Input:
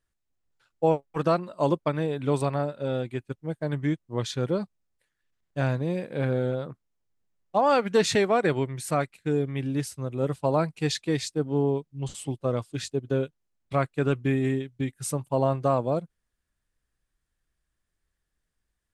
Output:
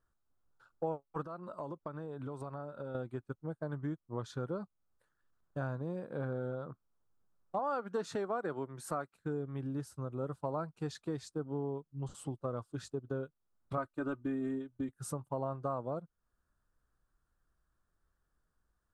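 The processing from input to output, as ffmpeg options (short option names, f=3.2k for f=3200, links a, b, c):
-filter_complex "[0:a]asettb=1/sr,asplit=3[a][b][c];[a]atrim=end=1.244[d];[b]atrim=start=1.24:end=2.95,asetpts=PTS-STARTPTS,afade=t=in:d=0.004:c=qsin,afade=t=out:st=1.706:d=0.004:c=qsin,acompressor=threshold=-38dB:ratio=3:attack=3.2:release=140:knee=1:detection=peak[e];[c]atrim=start=2.946[f];[d][e]acrossfade=d=0.004:c1=hsin:c2=qsin[g];[g][f]acrossfade=d=0.004:c1=qsin:c2=hsin,asettb=1/sr,asplit=3[h][i][j];[h]atrim=end=7.594[k];[i]atrim=start=7.59:end=9.13,asetpts=PTS-STARTPTS,afade=t=in:d=0.004:c=qsin,afade=t=out:st=1.536:d=0.004:c=qsin,highpass=180[l];[j]atrim=start=9.126[m];[k][l]acrossfade=d=0.004:c1=hsin:c2=qsin[n];[n][m]acrossfade=d=0.004:c1=qsin:c2=hsin,asettb=1/sr,asplit=3[o][p][q];[o]atrim=end=13.774[r];[p]atrim=start=13.77:end=14.89,asetpts=PTS-STARTPTS,afade=t=in:d=0.004:c=qsin,afade=t=out:st=1.116:d=0.004:c=qsin,aecho=1:1:3.3:0.8,atrim=end_sample=49392[s];[q]atrim=start=14.886[t];[r][s]acrossfade=d=0.004:c1=hsin:c2=qsin[u];[u][t]acrossfade=d=0.004:c1=qsin:c2=hsin,highshelf=f=1.7k:t=q:w=3:g=-7.5,acompressor=threshold=-42dB:ratio=2.5,volume=1dB"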